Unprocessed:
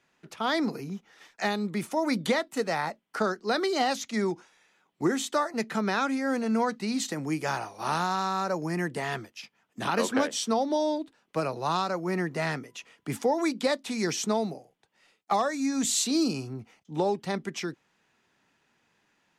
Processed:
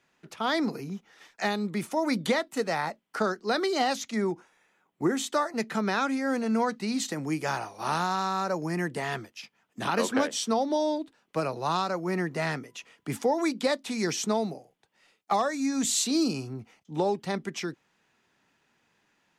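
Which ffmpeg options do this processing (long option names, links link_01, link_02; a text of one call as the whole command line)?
ffmpeg -i in.wav -filter_complex "[0:a]asettb=1/sr,asplit=3[link_01][link_02][link_03];[link_01]atrim=end=4.144[link_04];[link_02]atrim=start=4.14:end=5.17,asetpts=PTS-STARTPTS,afade=type=in:duration=0.004:curve=qsin,afade=type=out:start_time=1.026:duration=0.004:curve=qsin,equalizer=frequency=4600:width_type=o:width=1.5:gain=-8.5[link_05];[link_03]atrim=start=5.166[link_06];[link_04][link_05]acrossfade=duration=0.004:curve1=hsin:curve2=qsin[link_07];[link_07][link_06]acrossfade=duration=0.004:curve1=qsin:curve2=hsin" out.wav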